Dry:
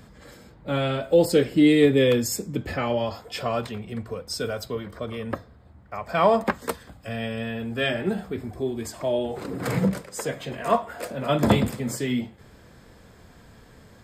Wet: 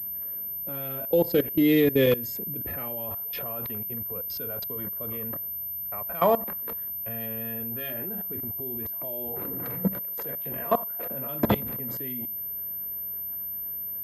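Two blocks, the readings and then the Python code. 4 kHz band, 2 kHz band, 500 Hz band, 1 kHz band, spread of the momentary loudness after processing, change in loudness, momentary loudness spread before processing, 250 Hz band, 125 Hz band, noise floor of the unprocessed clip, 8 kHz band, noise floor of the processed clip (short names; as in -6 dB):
-8.5 dB, -7.0 dB, -4.5 dB, -5.0 dB, 8 LU, -3.0 dB, 15 LU, -5.0 dB, -6.5 dB, -51 dBFS, under -15 dB, -34 dBFS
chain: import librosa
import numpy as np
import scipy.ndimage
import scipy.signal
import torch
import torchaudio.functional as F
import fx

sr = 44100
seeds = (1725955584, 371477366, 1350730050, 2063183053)

y = fx.wiener(x, sr, points=9)
y = fx.level_steps(y, sr, step_db=19)
y = fx.pwm(y, sr, carrier_hz=13000.0)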